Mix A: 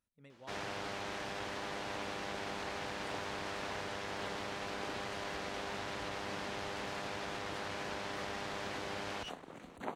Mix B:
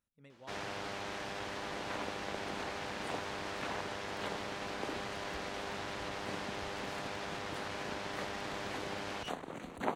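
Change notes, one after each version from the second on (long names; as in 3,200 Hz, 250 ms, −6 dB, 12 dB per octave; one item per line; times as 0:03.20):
second sound +6.5 dB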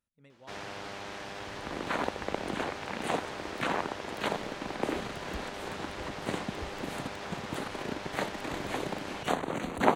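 second sound +11.0 dB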